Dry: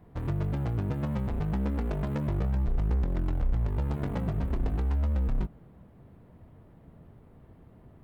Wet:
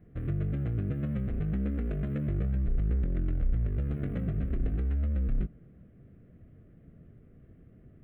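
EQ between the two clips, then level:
parametric band 75 Hz −2 dB
high-shelf EQ 2,800 Hz −10 dB
phaser with its sweep stopped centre 2,200 Hz, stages 4
0.0 dB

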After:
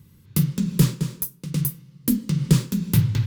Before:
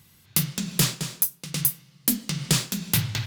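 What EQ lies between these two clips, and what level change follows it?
Butterworth band-reject 700 Hz, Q 2.6
tilt shelving filter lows +9 dB, about 750 Hz
high-shelf EQ 11,000 Hz +6 dB
0.0 dB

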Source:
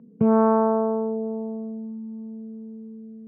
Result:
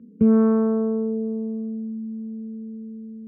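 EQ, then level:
bass and treble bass +11 dB, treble −6 dB
phaser with its sweep stopped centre 330 Hz, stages 4
0.0 dB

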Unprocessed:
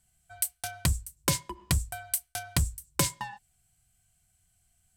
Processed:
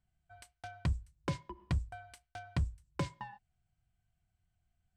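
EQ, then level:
head-to-tape spacing loss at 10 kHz 29 dB
−5.0 dB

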